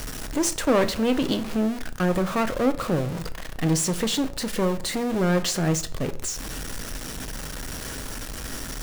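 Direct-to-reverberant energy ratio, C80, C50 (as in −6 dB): 10.0 dB, 20.0 dB, 16.5 dB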